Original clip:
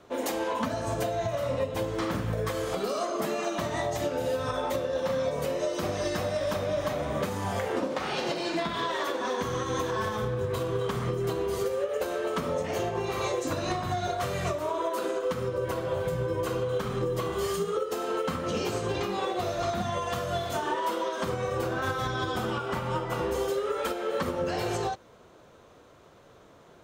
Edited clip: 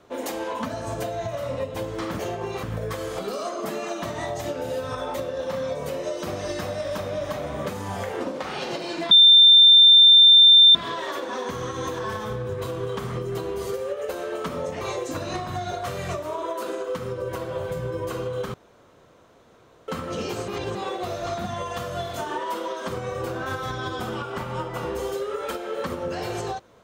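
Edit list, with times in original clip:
8.67 add tone 3580 Hz -8.5 dBFS 1.64 s
12.73–13.17 move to 2.19
16.9–18.24 room tone
18.84–19.11 reverse

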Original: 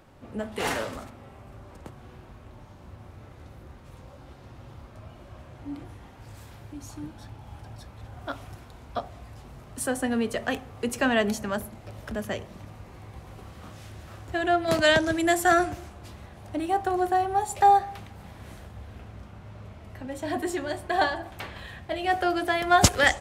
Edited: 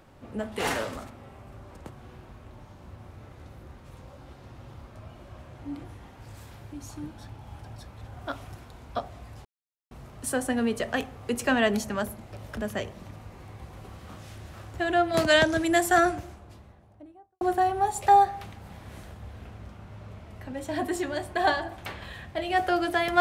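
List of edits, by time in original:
9.45 insert silence 0.46 s
15.38–16.95 studio fade out

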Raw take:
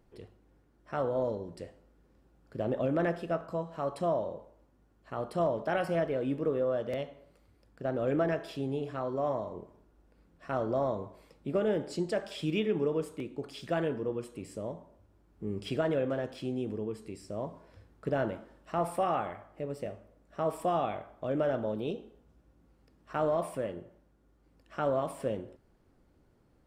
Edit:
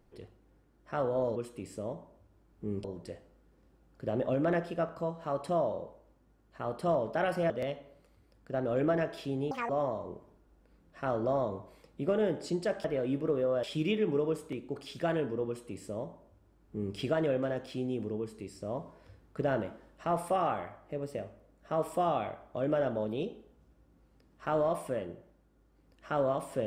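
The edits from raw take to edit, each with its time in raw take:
6.02–6.81 move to 12.31
8.82–9.16 speed 185%
14.15–15.63 copy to 1.36

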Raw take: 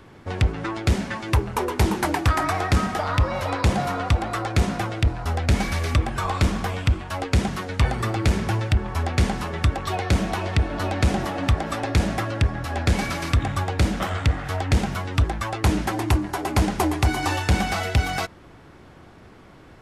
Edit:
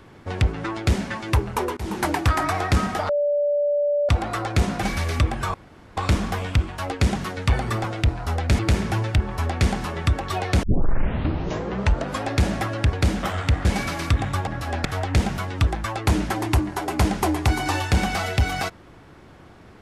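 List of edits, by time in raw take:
1.77–2.03 fade in, from -24 dB
3.09–4.09 bleep 582 Hz -18 dBFS
4.83–5.58 move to 8.16
6.29 insert room tone 0.43 s
10.2 tape start 1.65 s
12.5–12.88 swap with 13.7–14.42

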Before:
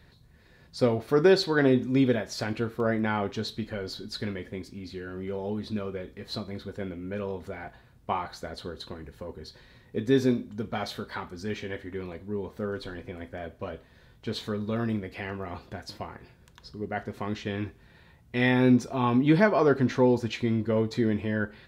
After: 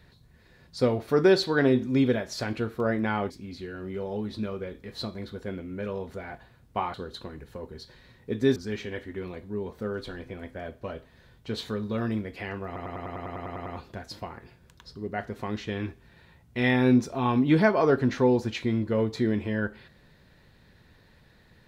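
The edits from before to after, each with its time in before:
3.3–4.63 cut
8.27–8.6 cut
10.22–11.34 cut
15.44 stutter 0.10 s, 11 plays

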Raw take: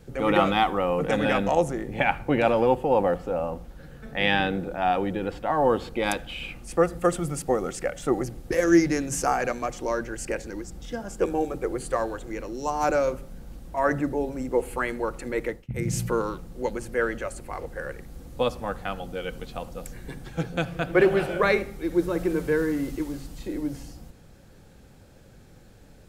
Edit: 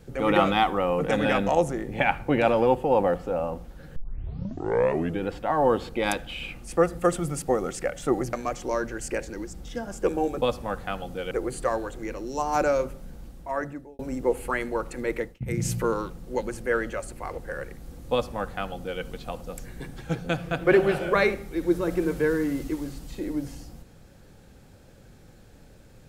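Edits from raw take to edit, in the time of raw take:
3.96 tape start 1.27 s
8.33–9.5 cut
13.42–14.27 fade out
18.4–19.29 copy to 11.59

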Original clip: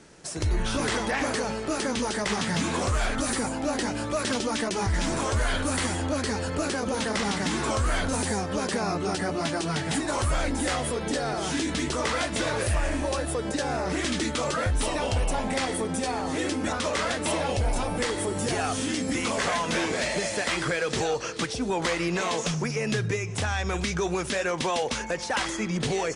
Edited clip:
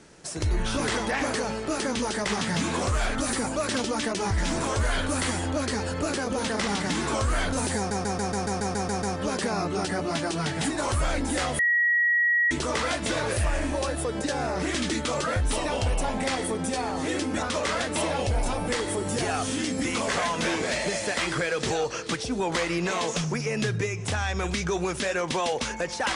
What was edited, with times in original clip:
3.56–4.12 cut
8.33 stutter 0.14 s, 10 plays
10.89–11.81 bleep 1910 Hz -19 dBFS

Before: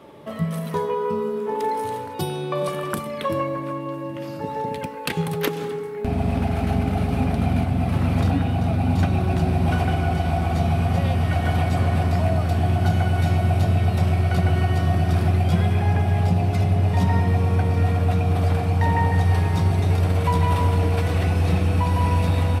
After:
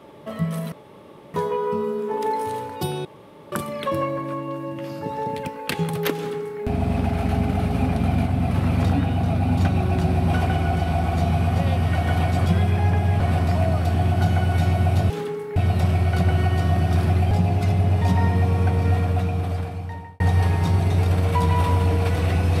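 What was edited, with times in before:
0.72 insert room tone 0.62 s
2.43–2.9 room tone
5.54–6 copy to 13.74
15.49–16.23 move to 11.84
17.85–19.12 fade out

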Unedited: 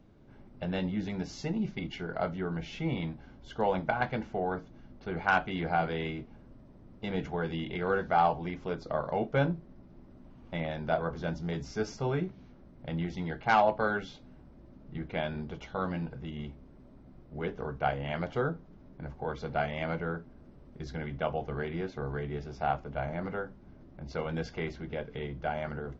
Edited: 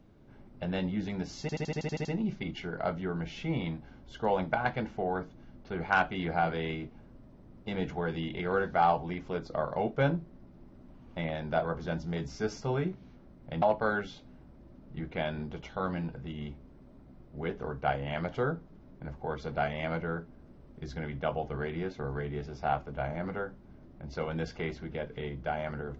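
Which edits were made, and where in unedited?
1.41 stutter 0.08 s, 9 plays
12.98–13.6 cut

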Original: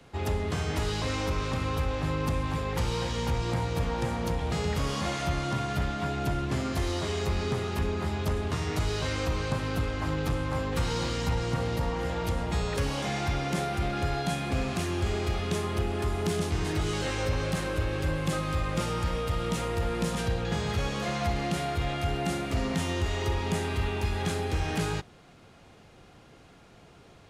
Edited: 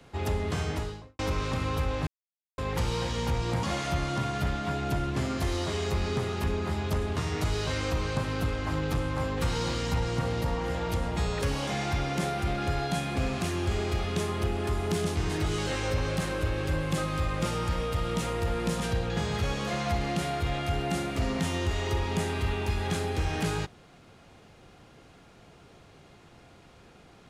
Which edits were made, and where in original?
0.6–1.19 studio fade out
2.07–2.58 mute
3.63–4.98 cut

